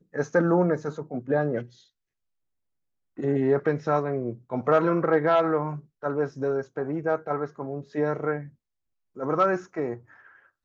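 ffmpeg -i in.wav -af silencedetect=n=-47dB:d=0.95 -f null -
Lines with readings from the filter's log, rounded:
silence_start: 1.81
silence_end: 3.17 | silence_duration: 1.37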